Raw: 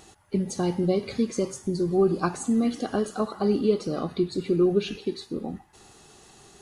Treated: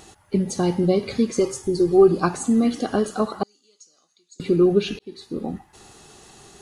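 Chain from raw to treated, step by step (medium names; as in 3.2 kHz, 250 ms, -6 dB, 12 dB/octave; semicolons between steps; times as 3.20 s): 1.39–2.08 s: comb 2.4 ms, depth 59%; 3.43–4.40 s: band-pass filter 6.7 kHz, Q 10; 4.99–5.45 s: fade in linear; trim +4.5 dB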